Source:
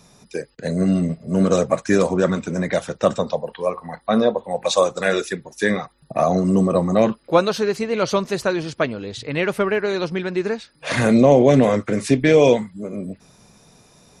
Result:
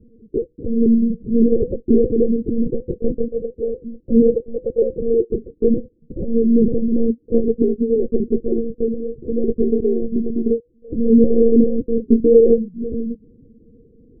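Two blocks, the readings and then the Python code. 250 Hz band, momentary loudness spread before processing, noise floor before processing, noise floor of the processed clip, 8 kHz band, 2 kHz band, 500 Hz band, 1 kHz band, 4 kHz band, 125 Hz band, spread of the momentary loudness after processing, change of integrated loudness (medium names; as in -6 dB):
+3.5 dB, 14 LU, -56 dBFS, -57 dBFS, under -40 dB, under -40 dB, +1.0 dB, under -25 dB, under -40 dB, -7.0 dB, 12 LU, +1.0 dB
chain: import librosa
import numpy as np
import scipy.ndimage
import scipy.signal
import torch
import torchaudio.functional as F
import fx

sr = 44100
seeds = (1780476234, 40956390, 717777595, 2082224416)

p1 = fx.block_float(x, sr, bits=5)
p2 = scipy.signal.sosfilt(scipy.signal.butter(16, 500.0, 'lowpass', fs=sr, output='sos'), p1)
p3 = fx.low_shelf(p2, sr, hz=96.0, db=-7.5)
p4 = fx.rider(p3, sr, range_db=4, speed_s=0.5)
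p5 = p3 + (p4 * 10.0 ** (-2.5 / 20.0))
p6 = fx.lpc_monotone(p5, sr, seeds[0], pitch_hz=230.0, order=8)
y = p6 * 10.0 ** (1.0 / 20.0)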